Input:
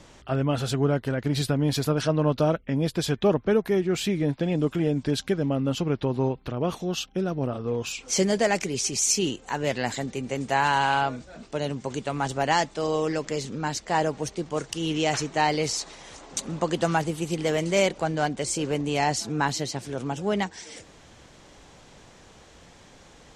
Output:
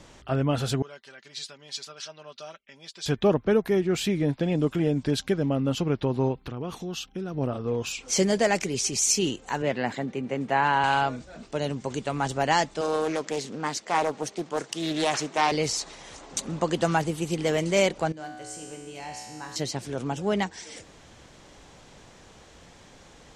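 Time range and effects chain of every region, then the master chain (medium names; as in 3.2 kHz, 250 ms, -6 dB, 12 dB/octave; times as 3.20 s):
0.82–3.06 s: low-pass 6.6 kHz 24 dB/octave + differentiator + comb 5.1 ms, depth 58%
6.38–7.34 s: peaking EQ 600 Hz -8.5 dB 0.27 oct + compression 2:1, threshold -33 dBFS
9.62–10.84 s: high-pass 170 Hz + tone controls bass +4 dB, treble -15 dB
12.81–15.52 s: high-pass 210 Hz + loudspeaker Doppler distortion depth 0.32 ms
18.12–19.56 s: treble shelf 7.3 kHz +6.5 dB + feedback comb 62 Hz, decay 1.7 s, mix 90%
whole clip: none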